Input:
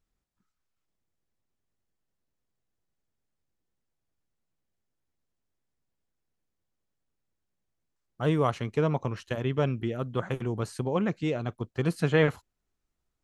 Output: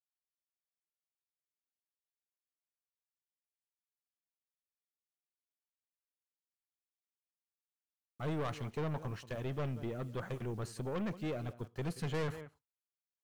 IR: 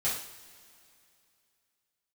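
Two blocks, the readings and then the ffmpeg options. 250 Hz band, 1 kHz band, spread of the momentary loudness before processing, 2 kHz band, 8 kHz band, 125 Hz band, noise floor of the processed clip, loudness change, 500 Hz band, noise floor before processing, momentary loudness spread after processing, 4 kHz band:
-10.5 dB, -10.5 dB, 8 LU, -12.0 dB, no reading, -9.5 dB, under -85 dBFS, -11.0 dB, -11.5 dB, -82 dBFS, 5 LU, -9.5 dB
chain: -filter_complex "[0:a]acrusher=bits=9:mix=0:aa=0.000001,asplit=2[s0][s1];[s1]adelay=180.8,volume=0.1,highshelf=f=4000:g=-4.07[s2];[s0][s2]amix=inputs=2:normalize=0,asplit=2[s3][s4];[1:a]atrim=start_sample=2205,afade=t=out:st=0.18:d=0.01,atrim=end_sample=8379[s5];[s4][s5]afir=irnorm=-1:irlink=0,volume=0.0316[s6];[s3][s6]amix=inputs=2:normalize=0,aeval=exprs='(tanh(22.4*val(0)+0.2)-tanh(0.2))/22.4':c=same,volume=0.531"

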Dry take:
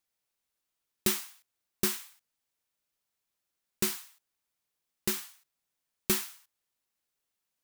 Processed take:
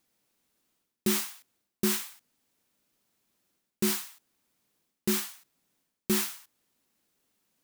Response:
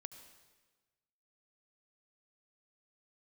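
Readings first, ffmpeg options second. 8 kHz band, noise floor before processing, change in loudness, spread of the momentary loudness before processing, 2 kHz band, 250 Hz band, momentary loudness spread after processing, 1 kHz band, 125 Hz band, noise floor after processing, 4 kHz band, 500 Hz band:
+1.5 dB, -85 dBFS, +2.0 dB, 14 LU, +1.5 dB, +7.0 dB, 15 LU, +2.5 dB, +4.5 dB, under -85 dBFS, +1.5 dB, +3.5 dB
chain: -af "equalizer=f=240:w=0.81:g=11.5,areverse,acompressor=threshold=0.02:ratio=5,areverse,volume=2.66"

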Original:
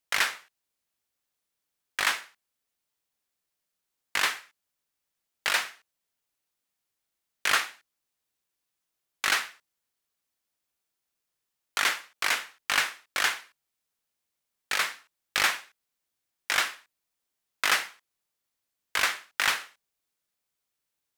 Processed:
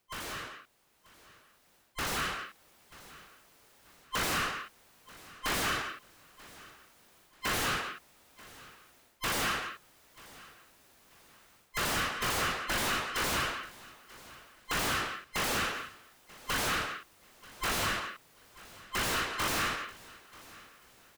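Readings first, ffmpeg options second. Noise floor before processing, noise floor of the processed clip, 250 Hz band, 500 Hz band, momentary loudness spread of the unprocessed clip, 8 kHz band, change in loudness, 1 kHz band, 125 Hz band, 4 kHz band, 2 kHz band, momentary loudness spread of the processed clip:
-84 dBFS, -66 dBFS, +11.0 dB, +4.5 dB, 12 LU, -2.5 dB, -5.0 dB, -0.5 dB, no reading, -4.0 dB, -5.5 dB, 21 LU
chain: -filter_complex "[0:a]afftfilt=real='real(if(between(b,1,1008),(2*floor((b-1)/48)+1)*48-b,b),0)':imag='imag(if(between(b,1,1008),(2*floor((b-1)/48)+1)*48-b,b),0)*if(between(b,1,1008),-1,1)':win_size=2048:overlap=0.75,areverse,acompressor=threshold=0.0224:ratio=16,areverse,aeval=exprs='0.0708*sin(PI/2*6.31*val(0)/0.0708)':c=same,asplit=2[s0][s1];[s1]adelay=170,highpass=300,lowpass=3400,asoftclip=type=hard:threshold=0.0266,volume=0.316[s2];[s0][s2]amix=inputs=2:normalize=0,volume=50.1,asoftclip=hard,volume=0.02,asplit=2[s3][s4];[s4]aecho=0:1:936|1872:0.0891|0.0276[s5];[s3][s5]amix=inputs=2:normalize=0,dynaudnorm=f=420:g=9:m=2.82,highshelf=f=2400:g=-10"

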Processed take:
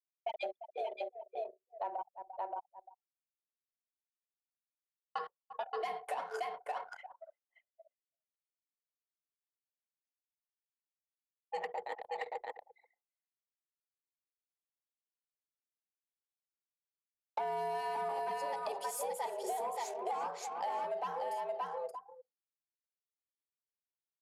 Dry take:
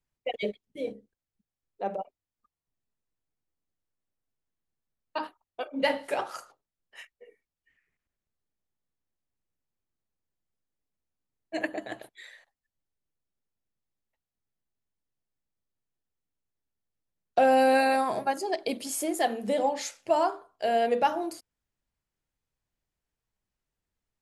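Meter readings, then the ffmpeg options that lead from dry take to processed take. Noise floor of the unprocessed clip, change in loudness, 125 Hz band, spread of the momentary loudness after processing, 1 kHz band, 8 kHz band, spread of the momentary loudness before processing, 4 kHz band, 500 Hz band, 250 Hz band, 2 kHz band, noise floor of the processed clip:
under -85 dBFS, -11.5 dB, no reading, 10 LU, -7.5 dB, -9.5 dB, 17 LU, -12.5 dB, -11.0 dB, -24.5 dB, -13.0 dB, under -85 dBFS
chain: -filter_complex "[0:a]highpass=320,highshelf=f=8000:g=6.5,asplit=2[s0][s1];[s1]aecho=0:1:575:0.596[s2];[s0][s2]amix=inputs=2:normalize=0,asoftclip=type=tanh:threshold=0.0841,afreqshift=170,acontrast=47,tiltshelf=f=900:g=6.5,asplit=2[s3][s4];[s4]aecho=0:1:345:0.178[s5];[s3][s5]amix=inputs=2:normalize=0,anlmdn=1.58,acompressor=threshold=0.0282:ratio=6,volume=0.596"

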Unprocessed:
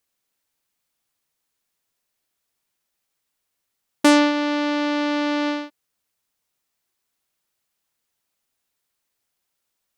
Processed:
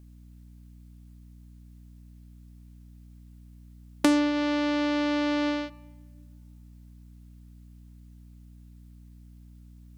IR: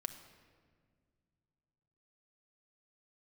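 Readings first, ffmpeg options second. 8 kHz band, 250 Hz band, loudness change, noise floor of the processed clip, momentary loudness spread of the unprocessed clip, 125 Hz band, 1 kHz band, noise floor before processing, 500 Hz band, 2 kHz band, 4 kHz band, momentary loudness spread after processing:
-8.5 dB, -4.5 dB, -5.5 dB, -50 dBFS, 11 LU, no reading, -8.5 dB, -78 dBFS, -6.0 dB, -7.5 dB, -7.0 dB, 7 LU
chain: -filter_complex "[0:a]acrossover=split=210[s0][s1];[s1]acompressor=threshold=0.0355:ratio=5[s2];[s0][s2]amix=inputs=2:normalize=0,aeval=exprs='val(0)+0.00224*(sin(2*PI*60*n/s)+sin(2*PI*2*60*n/s)/2+sin(2*PI*3*60*n/s)/3+sin(2*PI*4*60*n/s)/4+sin(2*PI*5*60*n/s)/5)':c=same,asplit=2[s3][s4];[1:a]atrim=start_sample=2205,asetrate=48510,aresample=44100[s5];[s4][s5]afir=irnorm=-1:irlink=0,volume=0.376[s6];[s3][s6]amix=inputs=2:normalize=0,volume=1.33"

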